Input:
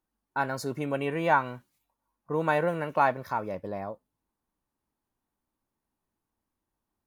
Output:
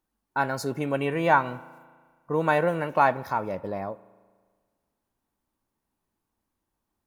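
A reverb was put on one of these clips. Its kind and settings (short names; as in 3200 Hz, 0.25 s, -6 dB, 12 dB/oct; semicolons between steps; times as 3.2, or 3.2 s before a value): spring tank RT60 1.6 s, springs 36 ms, chirp 60 ms, DRR 19 dB; gain +3 dB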